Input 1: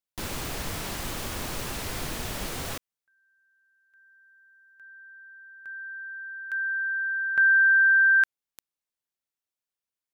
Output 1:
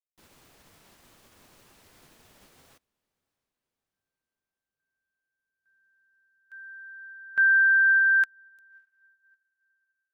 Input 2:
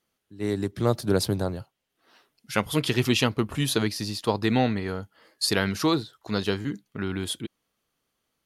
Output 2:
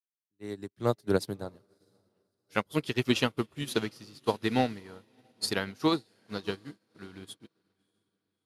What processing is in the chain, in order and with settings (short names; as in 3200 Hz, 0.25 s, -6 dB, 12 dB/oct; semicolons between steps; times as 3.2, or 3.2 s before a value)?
low shelf 77 Hz -10.5 dB; diffused feedback echo 0.635 s, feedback 61%, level -14 dB; upward expander 2.5:1, over -44 dBFS